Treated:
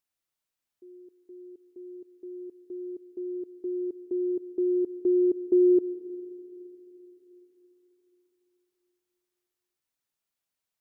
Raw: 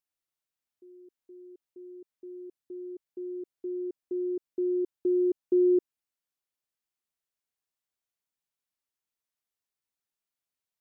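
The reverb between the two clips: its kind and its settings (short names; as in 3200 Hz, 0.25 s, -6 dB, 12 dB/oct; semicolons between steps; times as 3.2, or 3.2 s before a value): digital reverb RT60 3.6 s, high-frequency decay 0.3×, pre-delay 80 ms, DRR 15 dB; gain +3 dB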